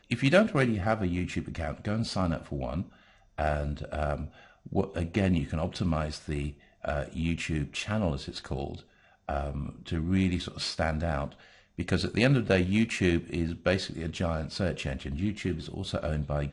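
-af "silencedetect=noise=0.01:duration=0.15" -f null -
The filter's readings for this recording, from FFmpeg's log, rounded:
silence_start: 2.83
silence_end: 3.38 | silence_duration: 0.55
silence_start: 4.27
silence_end: 4.66 | silence_duration: 0.39
silence_start: 6.51
silence_end: 6.85 | silence_duration: 0.33
silence_start: 8.80
silence_end: 9.29 | silence_duration: 0.49
silence_start: 11.32
silence_end: 11.79 | silence_duration: 0.46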